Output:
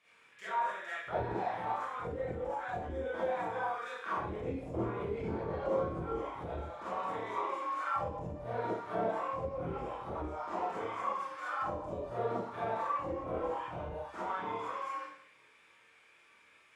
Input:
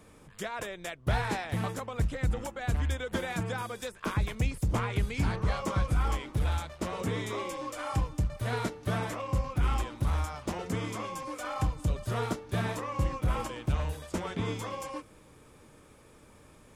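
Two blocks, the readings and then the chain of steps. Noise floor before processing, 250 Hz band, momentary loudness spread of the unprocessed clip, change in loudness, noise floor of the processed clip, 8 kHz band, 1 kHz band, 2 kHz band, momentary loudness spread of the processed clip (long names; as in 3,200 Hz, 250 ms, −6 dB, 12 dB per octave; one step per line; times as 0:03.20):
−56 dBFS, −6.5 dB, 7 LU, −4.5 dB, −64 dBFS, below −15 dB, +1.5 dB, −4.5 dB, 6 LU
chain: multi-voice chorus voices 4, 0.35 Hz, delay 25 ms, depth 1.6 ms
four-comb reverb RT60 0.68 s, combs from 33 ms, DRR −8 dB
envelope filter 380–2,500 Hz, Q 2.1, down, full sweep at −19 dBFS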